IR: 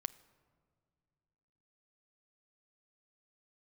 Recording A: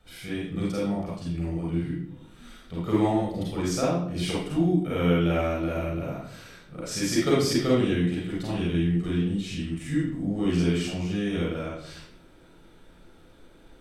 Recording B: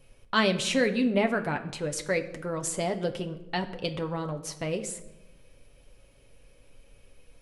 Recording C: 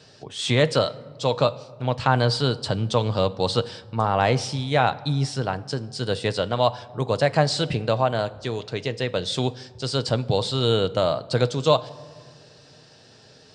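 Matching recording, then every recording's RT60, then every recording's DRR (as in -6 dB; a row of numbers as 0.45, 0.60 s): C; 0.65 s, 1.0 s, not exponential; -7.5, 4.5, 11.5 dB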